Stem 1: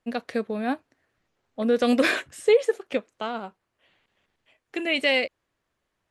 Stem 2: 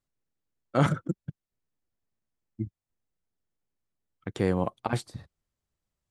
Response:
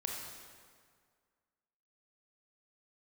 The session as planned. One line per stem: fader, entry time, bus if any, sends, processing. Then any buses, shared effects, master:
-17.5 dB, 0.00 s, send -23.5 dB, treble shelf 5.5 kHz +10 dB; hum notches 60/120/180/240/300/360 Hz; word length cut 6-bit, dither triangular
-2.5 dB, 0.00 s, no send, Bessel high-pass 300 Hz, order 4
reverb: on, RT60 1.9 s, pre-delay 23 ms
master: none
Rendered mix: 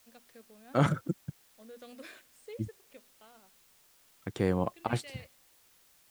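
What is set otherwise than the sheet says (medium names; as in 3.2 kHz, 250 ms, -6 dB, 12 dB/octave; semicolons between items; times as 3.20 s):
stem 1 -17.5 dB -> -28.5 dB; stem 2: missing Bessel high-pass 300 Hz, order 4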